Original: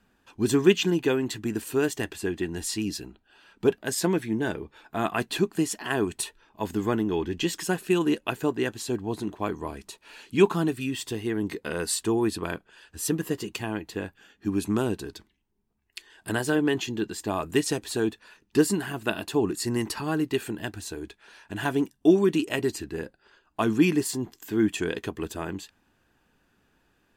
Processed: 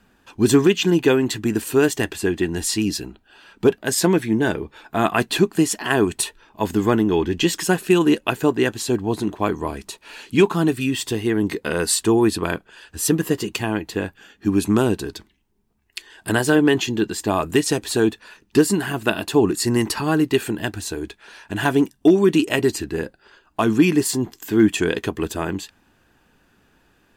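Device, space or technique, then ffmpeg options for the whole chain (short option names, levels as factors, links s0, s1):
limiter into clipper: -af "alimiter=limit=0.237:level=0:latency=1:release=289,asoftclip=type=hard:threshold=0.211,volume=2.51"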